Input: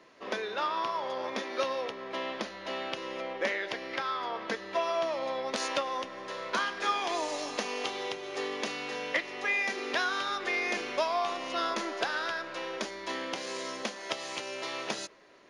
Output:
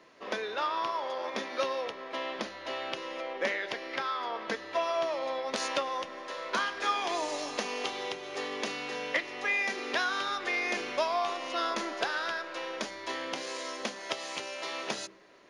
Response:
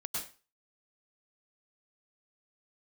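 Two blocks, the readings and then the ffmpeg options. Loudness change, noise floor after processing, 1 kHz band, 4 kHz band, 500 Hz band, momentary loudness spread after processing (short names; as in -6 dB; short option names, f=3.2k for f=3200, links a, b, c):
0.0 dB, -45 dBFS, 0.0 dB, 0.0 dB, -0.5 dB, 7 LU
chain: -af "bandreject=f=65.11:t=h:w=4,bandreject=f=130.22:t=h:w=4,bandreject=f=195.33:t=h:w=4,bandreject=f=260.44:t=h:w=4,bandreject=f=325.55:t=h:w=4,bandreject=f=390.66:t=h:w=4"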